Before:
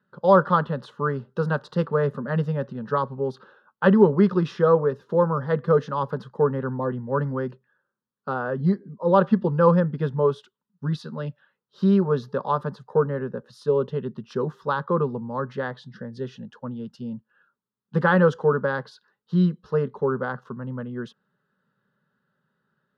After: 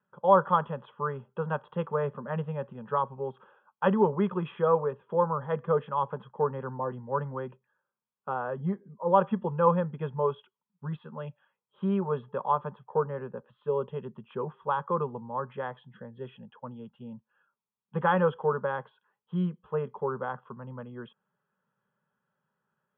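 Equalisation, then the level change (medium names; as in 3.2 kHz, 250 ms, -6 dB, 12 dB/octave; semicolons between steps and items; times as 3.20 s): rippled Chebyshev low-pass 3.4 kHz, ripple 9 dB; peaking EQ 290 Hz -11 dB 0.27 oct; 0.0 dB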